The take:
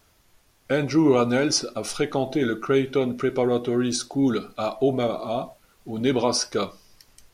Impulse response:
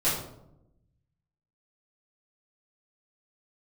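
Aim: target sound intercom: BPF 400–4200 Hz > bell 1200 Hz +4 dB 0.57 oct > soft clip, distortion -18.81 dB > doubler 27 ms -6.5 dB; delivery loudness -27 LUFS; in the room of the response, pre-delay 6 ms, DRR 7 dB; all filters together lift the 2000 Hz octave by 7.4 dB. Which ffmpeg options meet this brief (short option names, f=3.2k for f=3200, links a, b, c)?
-filter_complex "[0:a]equalizer=f=2k:t=o:g=9,asplit=2[a][b];[1:a]atrim=start_sample=2205,adelay=6[c];[b][c]afir=irnorm=-1:irlink=0,volume=-18.5dB[d];[a][d]amix=inputs=2:normalize=0,highpass=400,lowpass=4.2k,equalizer=f=1.2k:t=o:w=0.57:g=4,asoftclip=threshold=-13dB,asplit=2[e][f];[f]adelay=27,volume=-6.5dB[g];[e][g]amix=inputs=2:normalize=0,volume=-2.5dB"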